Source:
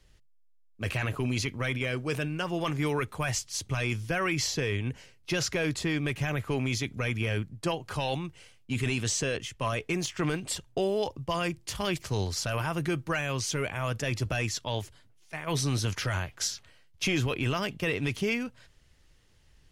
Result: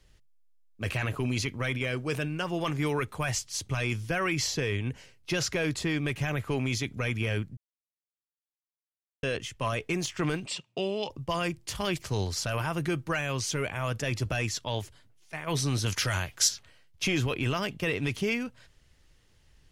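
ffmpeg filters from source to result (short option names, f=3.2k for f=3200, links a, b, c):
-filter_complex "[0:a]asettb=1/sr,asplit=3[a][b][c];[a]atrim=end=10.464[d];[b]atrim=start=10.46:end=11.1,asetpts=PTS-STARTPTS,afade=t=in:d=0.004:c=qsin,afade=t=out:st=0.636:d=0.004:c=qsin,highpass=f=150:w=0.5412,highpass=f=150:w=1.3066,equalizer=f=300:t=q:w=4:g=-7,equalizer=f=470:t=q:w=4:g=-6,equalizer=f=750:t=q:w=4:g=-5,equalizer=f=1.6k:t=q:w=4:g=-8,equalizer=f=2.6k:t=q:w=4:g=10,equalizer=f=6.5k:t=q:w=4:g=-5,lowpass=f=7.5k:w=0.5412,lowpass=f=7.5k:w=1.3066[e];[c]atrim=start=11.096[f];[d][e]acrossfade=d=0.004:c1=hsin:c2=qsin[g];[g][f]acrossfade=d=0.004:c1=qsin:c2=hsin,asettb=1/sr,asplit=3[h][i][j];[h]atrim=end=15.864[k];[i]atrim=start=15.86:end=16.49,asetpts=PTS-STARTPTS,afade=t=in:d=0.004:c=qsin,afade=t=out:st=0.626:d=0.004:c=qsin,highshelf=f=3k:g=9[l];[j]atrim=start=16.486[m];[k][l]acrossfade=d=0.004:c1=hsin:c2=qsin[n];[n][m]acrossfade=d=0.004:c1=qsin:c2=hsin,asplit=3[o][p][q];[o]atrim=end=7.57,asetpts=PTS-STARTPTS,afade=t=out:st=7.566:d=0.004:c=hsin[r];[p]atrim=start=7.57:end=9.23,asetpts=PTS-STARTPTS,volume=0[s];[q]atrim=start=9.23,asetpts=PTS-STARTPTS,afade=t=in:d=0.004:c=hsin[t];[r][s][t]concat=n=3:v=0:a=1"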